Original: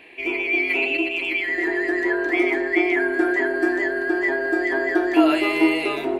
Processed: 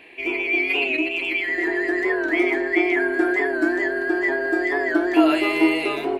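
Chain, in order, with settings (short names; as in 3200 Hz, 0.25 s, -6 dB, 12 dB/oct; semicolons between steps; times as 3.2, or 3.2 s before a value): record warp 45 rpm, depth 100 cents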